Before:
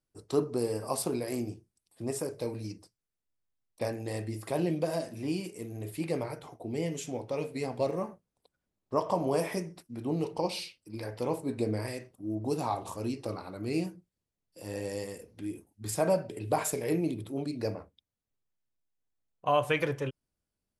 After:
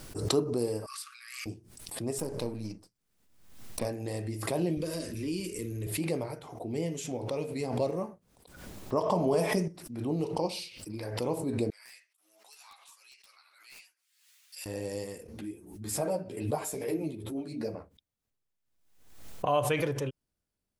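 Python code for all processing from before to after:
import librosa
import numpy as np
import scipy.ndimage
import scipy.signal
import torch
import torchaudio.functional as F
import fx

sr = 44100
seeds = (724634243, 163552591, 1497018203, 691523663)

y = fx.chain(x, sr, fx.brickwall_highpass(low_hz=1100.0),
    fx.high_shelf(hz=6000.0, db=-11.5), at=(0.86, 1.46))
y = fx.chain(y, sr, fx.halfwave_gain(db=-7.0),
    fx.peak_eq(hz=210.0, db=6.0, octaves=0.86), at=(2.18, 3.85))
y = fx.chain(y, sr, fx.low_shelf_res(hz=150.0, db=12.5, q=1.5),
    fx.fixed_phaser(hz=310.0, stages=4),
    fx.env_flatten(amount_pct=50), at=(4.77, 5.87))
y = fx.chain(y, sr, fx.high_shelf(hz=9800.0, db=-8.0),
    fx.comb(ms=4.7, depth=0.41),
    fx.env_flatten(amount_pct=50), at=(9.03, 9.68))
y = fx.chain(y, sr, fx.ladder_highpass(hz=1500.0, resonance_pct=20),
    fx.overflow_wrap(gain_db=37.5),
    fx.ensemble(), at=(11.7, 14.66))
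y = fx.chain(y, sr, fx.peak_eq(hz=3600.0, db=-2.5, octaves=2.7),
    fx.hum_notches(base_hz=60, count=8),
    fx.ensemble(), at=(15.27, 17.74))
y = fx.dynamic_eq(y, sr, hz=1700.0, q=0.9, threshold_db=-46.0, ratio=4.0, max_db=-5)
y = fx.pre_swell(y, sr, db_per_s=63.0)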